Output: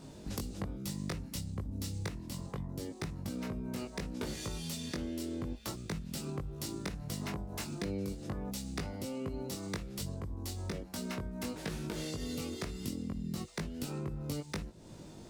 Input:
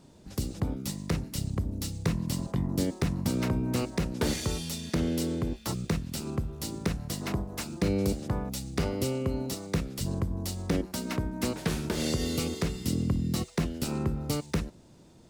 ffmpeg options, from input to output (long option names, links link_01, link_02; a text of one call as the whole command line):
ffmpeg -i in.wav -af "acompressor=threshold=-41dB:ratio=12,flanger=delay=19:depth=2.1:speed=0.67,volume=8.5dB" out.wav